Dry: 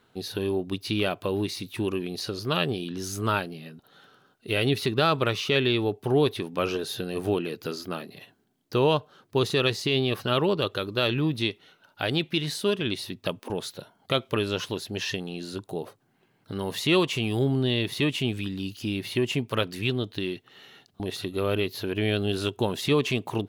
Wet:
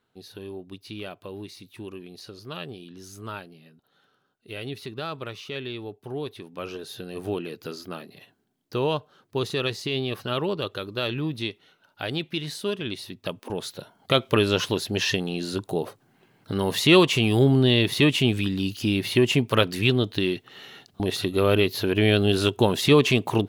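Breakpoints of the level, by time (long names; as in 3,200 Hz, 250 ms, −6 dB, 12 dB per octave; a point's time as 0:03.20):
0:06.24 −10.5 dB
0:07.38 −3 dB
0:13.13 −3 dB
0:14.36 +6 dB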